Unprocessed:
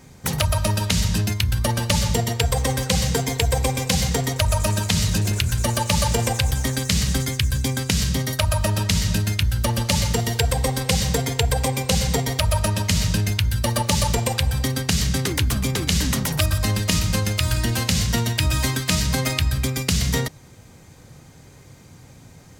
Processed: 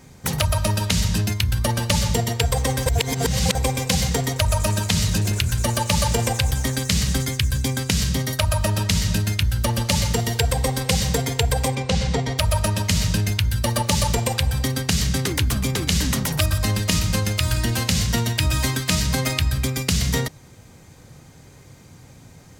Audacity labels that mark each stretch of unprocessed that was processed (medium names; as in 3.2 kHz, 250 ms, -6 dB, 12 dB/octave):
2.860000	3.550000	reverse
11.750000	12.380000	distance through air 97 m